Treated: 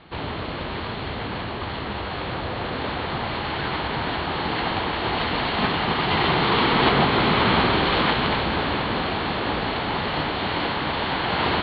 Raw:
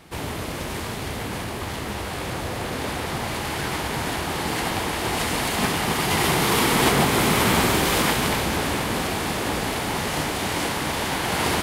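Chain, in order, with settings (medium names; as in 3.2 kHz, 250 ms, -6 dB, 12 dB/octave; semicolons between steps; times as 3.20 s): rippled Chebyshev low-pass 4.4 kHz, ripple 3 dB; trim +2.5 dB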